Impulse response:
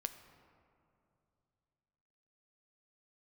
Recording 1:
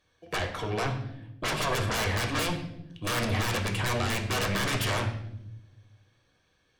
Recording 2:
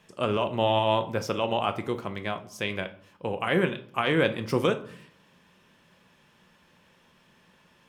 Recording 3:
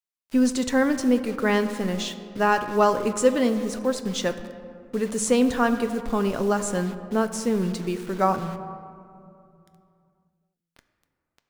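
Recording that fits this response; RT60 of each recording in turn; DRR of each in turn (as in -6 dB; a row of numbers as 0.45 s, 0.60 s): 3; 0.85 s, 0.55 s, 2.7 s; 2.5 dB, 7.5 dB, 8.5 dB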